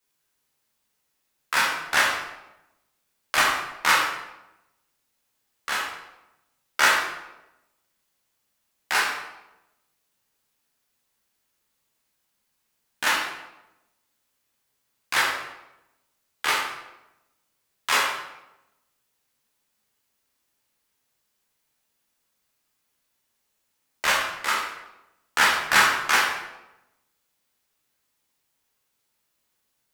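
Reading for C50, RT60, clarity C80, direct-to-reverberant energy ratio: 2.0 dB, 0.95 s, 5.0 dB, -4.5 dB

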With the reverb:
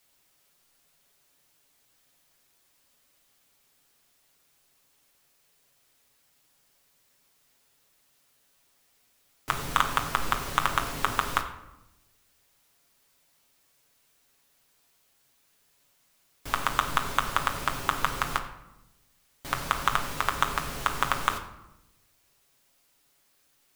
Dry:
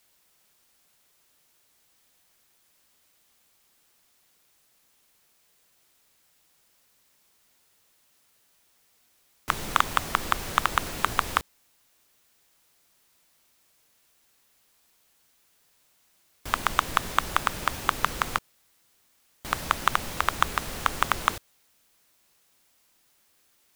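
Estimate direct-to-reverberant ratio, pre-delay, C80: 3.0 dB, 7 ms, 12.0 dB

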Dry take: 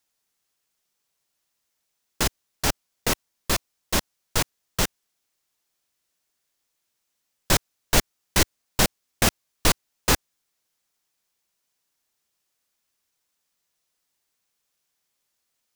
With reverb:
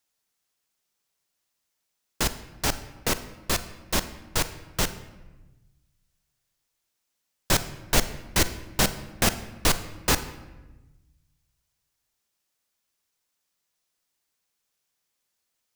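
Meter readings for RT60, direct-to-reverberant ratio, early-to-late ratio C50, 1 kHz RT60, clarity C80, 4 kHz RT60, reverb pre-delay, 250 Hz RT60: 1.1 s, 11.5 dB, 13.0 dB, 1.1 s, 15.0 dB, 0.75 s, 35 ms, 1.4 s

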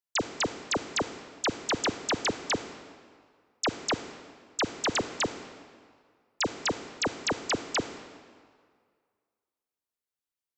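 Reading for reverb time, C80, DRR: 2.0 s, 12.0 dB, 10.5 dB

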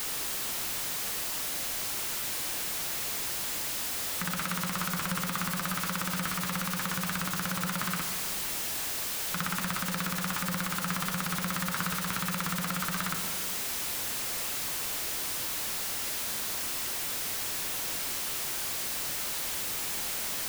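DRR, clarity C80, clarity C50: 7.0 dB, 9.0 dB, 8.0 dB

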